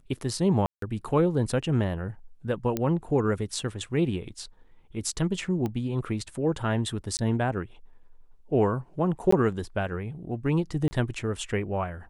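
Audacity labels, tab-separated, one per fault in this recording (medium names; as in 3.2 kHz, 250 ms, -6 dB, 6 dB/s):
0.660000	0.820000	dropout 163 ms
2.770000	2.770000	pop -13 dBFS
5.660000	5.660000	pop -19 dBFS
7.170000	7.190000	dropout 19 ms
9.310000	9.320000	dropout 14 ms
10.880000	10.910000	dropout 30 ms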